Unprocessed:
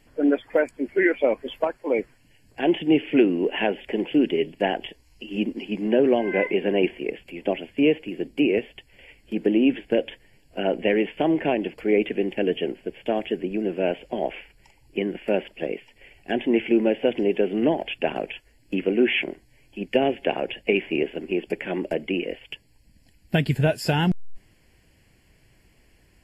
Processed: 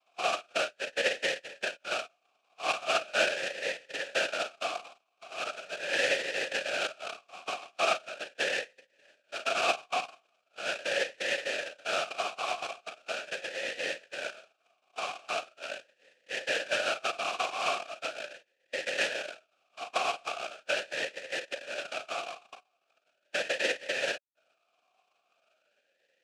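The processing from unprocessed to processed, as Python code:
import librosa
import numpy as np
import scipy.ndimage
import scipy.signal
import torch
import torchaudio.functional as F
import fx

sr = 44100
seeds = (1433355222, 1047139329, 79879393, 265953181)

p1 = x + fx.room_early_taps(x, sr, ms=(36, 51), db=(-9.0, -14.5), dry=0)
p2 = fx.spec_topn(p1, sr, count=32)
p3 = fx.noise_vocoder(p2, sr, seeds[0], bands=1)
p4 = fx.vowel_sweep(p3, sr, vowels='a-e', hz=0.4)
y = p4 * 10.0 ** (4.5 / 20.0)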